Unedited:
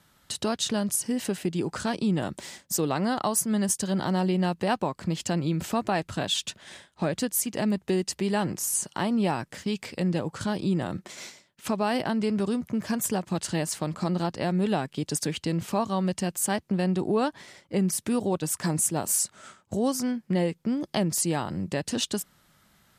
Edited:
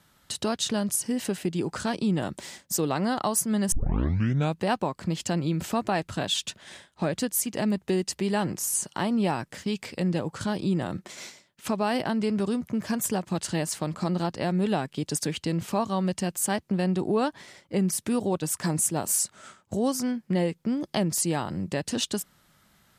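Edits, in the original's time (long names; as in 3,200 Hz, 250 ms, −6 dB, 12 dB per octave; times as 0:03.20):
0:03.72: tape start 0.86 s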